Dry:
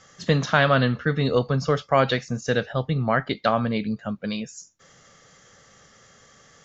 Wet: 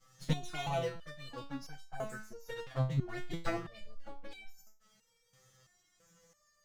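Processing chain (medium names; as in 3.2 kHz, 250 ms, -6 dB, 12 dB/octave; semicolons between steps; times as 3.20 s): comb filter that takes the minimum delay 6.1 ms; tone controls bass +8 dB, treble +4 dB; 1.97–2.34 s: spectral replace 1.8–6.4 kHz both; 0.51–2.97 s: bass shelf 140 Hz -10 dB; touch-sensitive flanger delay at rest 10.6 ms, full sweep at -14.5 dBFS; resonator arpeggio 3 Hz 130–770 Hz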